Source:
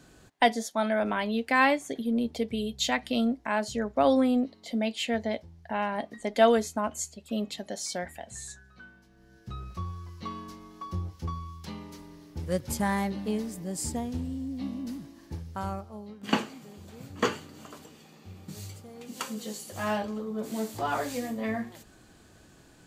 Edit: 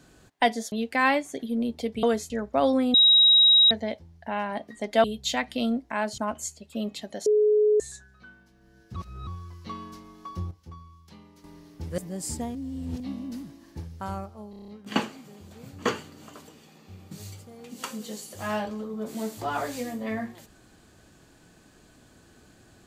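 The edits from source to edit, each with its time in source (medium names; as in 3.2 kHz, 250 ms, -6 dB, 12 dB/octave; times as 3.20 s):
0.72–1.28 s: delete
2.59–3.73 s: swap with 6.47–6.74 s
4.37–5.14 s: bleep 3.82 kHz -13.5 dBFS
7.82–8.36 s: bleep 423 Hz -17 dBFS
9.52–9.83 s: reverse
11.07–12.00 s: gain -10 dB
12.54–13.53 s: delete
14.10–14.55 s: reverse
16.05 s: stutter 0.03 s, 7 plays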